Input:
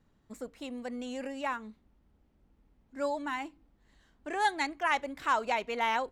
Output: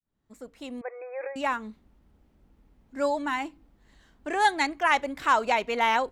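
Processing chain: fade-in on the opening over 1.09 s; 0.81–1.36 s: brick-wall FIR band-pass 320–2600 Hz; trim +6 dB

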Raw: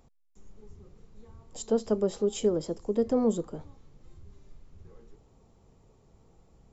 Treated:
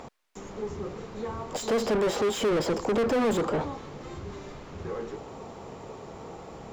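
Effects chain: overdrive pedal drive 39 dB, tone 1.7 kHz, clips at -14.5 dBFS; in parallel at -8.5 dB: crossover distortion -47 dBFS; on the sum: trim -6 dB

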